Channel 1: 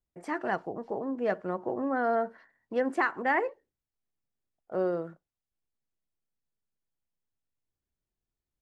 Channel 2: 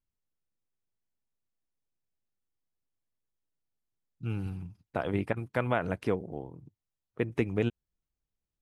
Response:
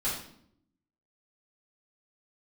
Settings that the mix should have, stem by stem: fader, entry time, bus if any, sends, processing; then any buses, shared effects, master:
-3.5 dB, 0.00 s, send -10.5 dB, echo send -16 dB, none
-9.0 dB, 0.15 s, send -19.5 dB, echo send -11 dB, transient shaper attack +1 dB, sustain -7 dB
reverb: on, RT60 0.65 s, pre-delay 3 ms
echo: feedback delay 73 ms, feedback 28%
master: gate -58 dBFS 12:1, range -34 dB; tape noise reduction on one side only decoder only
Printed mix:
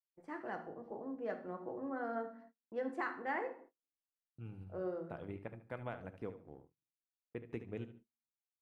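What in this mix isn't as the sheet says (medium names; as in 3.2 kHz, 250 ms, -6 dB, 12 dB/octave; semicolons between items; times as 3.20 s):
stem 1 -3.5 dB -> -14.0 dB; stem 2 -9.0 dB -> -16.0 dB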